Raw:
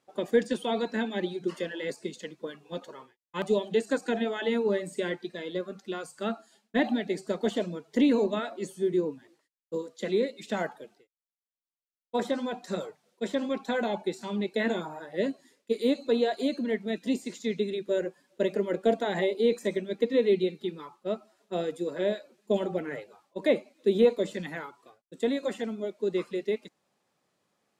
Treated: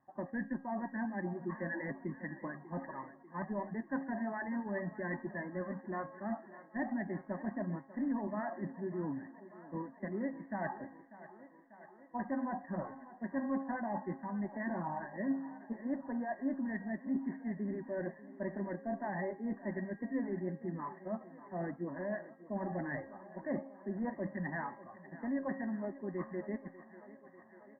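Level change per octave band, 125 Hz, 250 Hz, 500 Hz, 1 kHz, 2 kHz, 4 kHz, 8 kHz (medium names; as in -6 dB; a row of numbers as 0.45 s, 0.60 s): -2.0 dB, -6.5 dB, -14.5 dB, -4.0 dB, -6.5 dB, under -40 dB, under -30 dB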